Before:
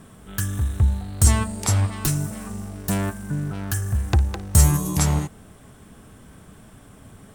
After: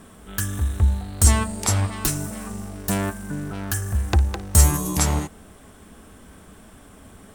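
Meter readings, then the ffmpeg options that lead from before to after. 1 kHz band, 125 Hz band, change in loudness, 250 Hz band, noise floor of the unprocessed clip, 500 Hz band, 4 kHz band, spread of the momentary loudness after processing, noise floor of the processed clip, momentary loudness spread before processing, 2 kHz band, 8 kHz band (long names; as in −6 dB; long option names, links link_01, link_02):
+2.0 dB, −1.5 dB, 0.0 dB, −1.0 dB, −48 dBFS, +2.0 dB, +2.0 dB, 14 LU, −48 dBFS, 12 LU, +2.0 dB, +2.0 dB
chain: -af "equalizer=frequency=130:width_type=o:width=0.52:gain=-13,volume=2dB"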